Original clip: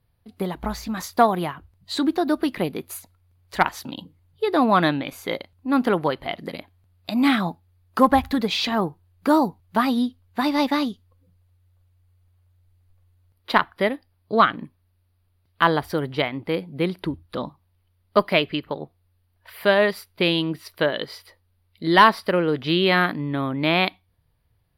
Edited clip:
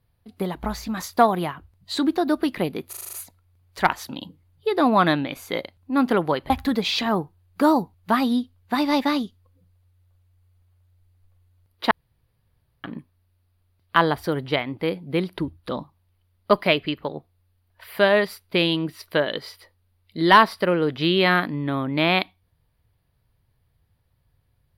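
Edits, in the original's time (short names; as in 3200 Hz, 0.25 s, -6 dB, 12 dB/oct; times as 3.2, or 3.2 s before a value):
2.89 stutter 0.04 s, 7 plays
6.26–8.16 cut
13.57–14.5 room tone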